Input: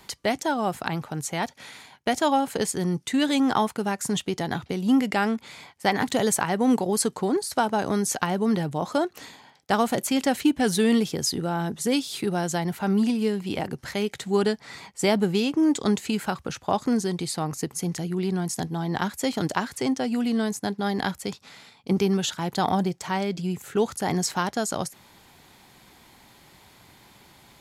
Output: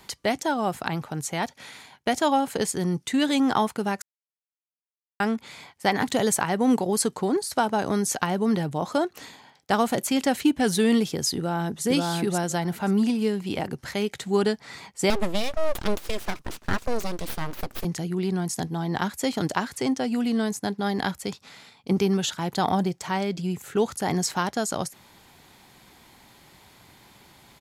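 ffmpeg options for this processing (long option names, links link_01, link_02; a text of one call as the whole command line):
ffmpeg -i in.wav -filter_complex "[0:a]asplit=2[link_01][link_02];[link_02]afade=type=in:start_time=11.36:duration=0.01,afade=type=out:start_time=11.84:duration=0.01,aecho=0:1:530|1060|1590:0.891251|0.133688|0.0200531[link_03];[link_01][link_03]amix=inputs=2:normalize=0,asettb=1/sr,asplit=3[link_04][link_05][link_06];[link_04]atrim=end=15.104[link_07];[link_05]atrim=start=15.1:end=17.85,asetpts=PTS-STARTPTS,afade=type=in:duration=0.004:curve=qsin,afade=type=out:start_time=2.746:duration=0.004:curve=qsin,aeval=exprs='abs(val(0))':channel_layout=same[link_08];[link_06]atrim=start=17.846[link_09];[link_07][link_08]acrossfade=duration=0.004:curve1=hsin:curve2=qsin[link_10];[link_10][link_09]acrossfade=duration=0.004:curve1=qsin:curve2=hsin,asplit=3[link_11][link_12][link_13];[link_11]atrim=end=4.02,asetpts=PTS-STARTPTS,afade=type=out:start_time=4.016:duration=0.004:curve=hsin[link_14];[link_12]atrim=start=4.02:end=5.2,asetpts=PTS-STARTPTS,volume=0[link_15];[link_13]atrim=start=5.2,asetpts=PTS-STARTPTS,afade=type=in:duration=0.004:curve=hsin[link_16];[link_14][link_15][link_16]concat=n=3:v=0:a=1" out.wav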